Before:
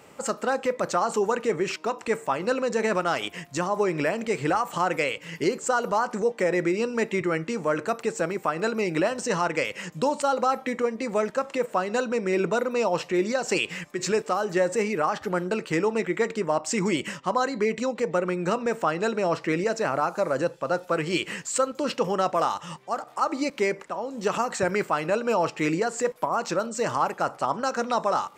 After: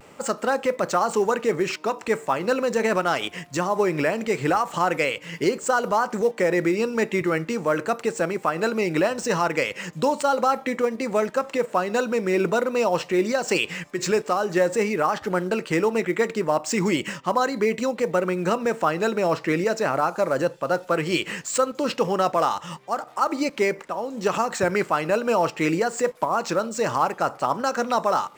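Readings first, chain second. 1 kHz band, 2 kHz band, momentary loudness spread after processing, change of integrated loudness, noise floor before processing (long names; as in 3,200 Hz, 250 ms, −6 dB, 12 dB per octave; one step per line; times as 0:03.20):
+2.5 dB, +2.5 dB, 4 LU, +2.5 dB, −49 dBFS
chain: running median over 3 samples
in parallel at −9 dB: floating-point word with a short mantissa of 2 bits
on the sum: pitch vibrato 0.4 Hz 22 cents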